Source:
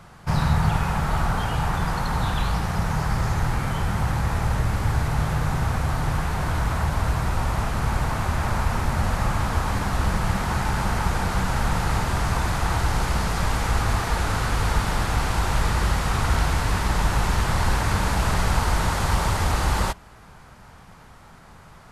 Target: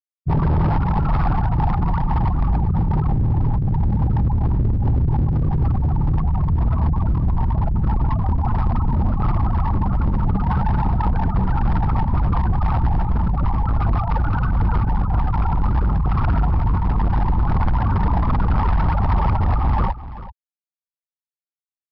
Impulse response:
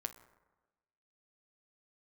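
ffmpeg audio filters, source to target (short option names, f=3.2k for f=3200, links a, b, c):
-filter_complex "[0:a]acrossover=split=2600[a][b];[b]acompressor=threshold=-46dB:ratio=4:attack=1:release=60[c];[a][c]amix=inputs=2:normalize=0,afftfilt=real='re*gte(hypot(re,im),0.158)':imag='im*gte(hypot(re,im),0.158)':win_size=1024:overlap=0.75,aresample=11025,asoftclip=type=hard:threshold=-23dB,aresample=44100,aecho=1:1:386:0.178,volume=8.5dB"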